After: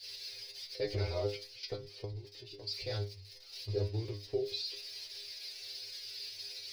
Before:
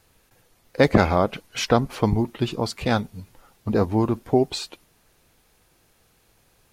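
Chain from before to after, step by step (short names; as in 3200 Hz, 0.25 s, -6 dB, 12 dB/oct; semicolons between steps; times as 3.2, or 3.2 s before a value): switching spikes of -18.5 dBFS; gate -24 dBFS, range -9 dB; EQ curve 140 Hz 0 dB, 210 Hz -30 dB, 380 Hz +6 dB, 870 Hz -14 dB, 1300 Hz -16 dB, 2200 Hz -2 dB, 3200 Hz -2 dB, 4800 Hz +13 dB, 7200 Hz -13 dB, 12000 Hz 0 dB; 1.47–2.71 level quantiser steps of 18 dB; limiter -16 dBFS, peak gain reduction 11.5 dB; air absorption 130 m; metallic resonator 100 Hz, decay 0.32 s, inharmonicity 0.002; gain +1.5 dB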